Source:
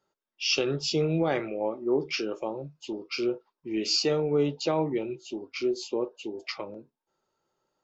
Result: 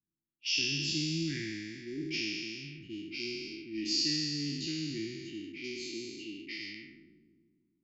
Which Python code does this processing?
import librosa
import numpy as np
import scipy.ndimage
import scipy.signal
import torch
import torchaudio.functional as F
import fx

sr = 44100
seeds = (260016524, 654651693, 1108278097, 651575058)

y = fx.spec_trails(x, sr, decay_s=2.35)
y = fx.env_lowpass(y, sr, base_hz=340.0, full_db=-22.5)
y = scipy.signal.sosfilt(scipy.signal.cheby1(4, 1.0, [330.0, 1800.0], 'bandstop', fs=sr, output='sos'), y)
y = y * librosa.db_to_amplitude(-8.0)